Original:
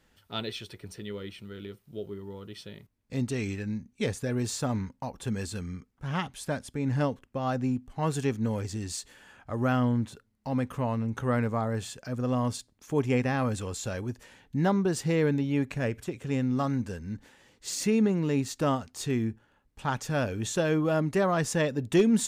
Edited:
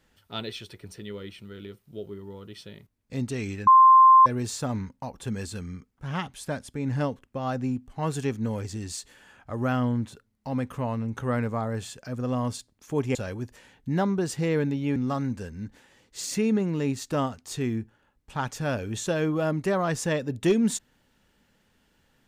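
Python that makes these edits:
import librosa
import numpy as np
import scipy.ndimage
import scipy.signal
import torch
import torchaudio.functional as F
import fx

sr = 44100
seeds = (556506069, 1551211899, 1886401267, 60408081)

y = fx.edit(x, sr, fx.bleep(start_s=3.67, length_s=0.59, hz=1050.0, db=-10.5),
    fx.cut(start_s=13.15, length_s=0.67),
    fx.cut(start_s=15.63, length_s=0.82), tone=tone)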